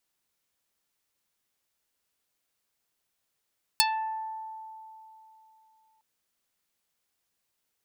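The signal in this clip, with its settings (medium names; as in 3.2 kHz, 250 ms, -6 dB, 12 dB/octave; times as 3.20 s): plucked string A5, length 2.21 s, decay 3.20 s, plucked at 0.45, dark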